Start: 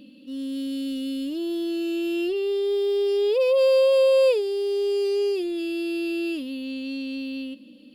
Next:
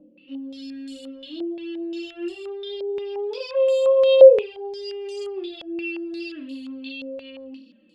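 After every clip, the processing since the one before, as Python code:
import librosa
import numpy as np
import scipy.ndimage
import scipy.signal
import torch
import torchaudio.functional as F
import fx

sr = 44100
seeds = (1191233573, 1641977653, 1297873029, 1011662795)

y = fx.room_flutter(x, sr, wall_m=4.5, rt60_s=0.35)
y = fx.env_flanger(y, sr, rest_ms=6.6, full_db=-13.0)
y = fx.filter_held_lowpass(y, sr, hz=5.7, low_hz=580.0, high_hz=7700.0)
y = F.gain(torch.from_numpy(y), -4.5).numpy()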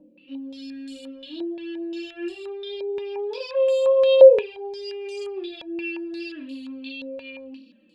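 y = fx.small_body(x, sr, hz=(940.0, 1700.0, 2400.0, 3900.0), ring_ms=95, db=14)
y = F.gain(torch.from_numpy(y), -1.0).numpy()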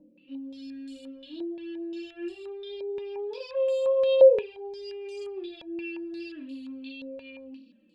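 y = fx.low_shelf(x, sr, hz=350.0, db=7.0)
y = F.gain(torch.from_numpy(y), -8.0).numpy()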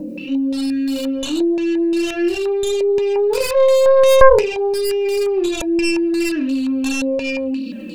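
y = fx.tracing_dist(x, sr, depth_ms=0.43)
y = fx.notch(y, sr, hz=3300.0, q=7.3)
y = fx.env_flatten(y, sr, amount_pct=50)
y = F.gain(torch.from_numpy(y), 5.5).numpy()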